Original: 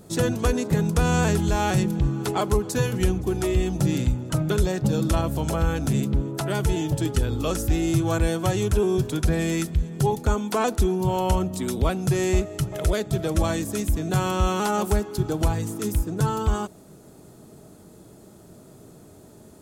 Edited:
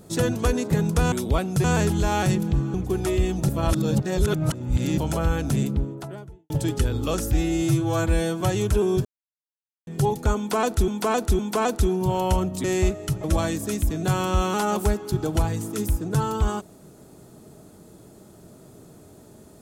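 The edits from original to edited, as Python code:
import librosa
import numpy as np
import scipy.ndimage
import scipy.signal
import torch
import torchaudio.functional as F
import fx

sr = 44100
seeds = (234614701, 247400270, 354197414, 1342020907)

y = fx.studio_fade_out(x, sr, start_s=5.9, length_s=0.97)
y = fx.edit(y, sr, fx.cut(start_s=2.22, length_s=0.89),
    fx.reverse_span(start_s=3.86, length_s=1.49),
    fx.stretch_span(start_s=7.7, length_s=0.72, factor=1.5),
    fx.silence(start_s=9.06, length_s=0.82),
    fx.repeat(start_s=10.38, length_s=0.51, count=3),
    fx.move(start_s=11.63, length_s=0.52, to_s=1.12),
    fx.cut(start_s=12.75, length_s=0.55), tone=tone)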